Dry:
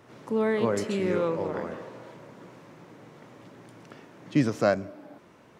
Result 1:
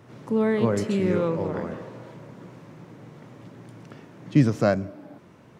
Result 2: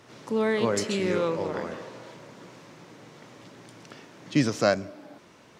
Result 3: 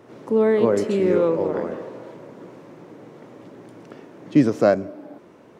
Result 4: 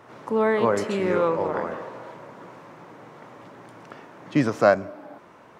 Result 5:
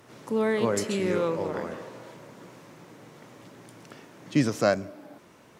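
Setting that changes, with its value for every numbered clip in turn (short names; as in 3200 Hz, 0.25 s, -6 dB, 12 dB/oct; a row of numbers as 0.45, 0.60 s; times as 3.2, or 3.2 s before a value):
bell, frequency: 120, 5200, 380, 1000, 14000 Hz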